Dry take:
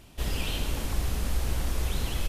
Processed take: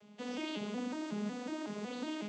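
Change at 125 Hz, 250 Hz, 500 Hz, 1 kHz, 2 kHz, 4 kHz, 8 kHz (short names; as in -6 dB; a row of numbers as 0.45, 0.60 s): -20.0, +2.0, -2.0, -5.0, -7.5, -10.5, -16.0 dB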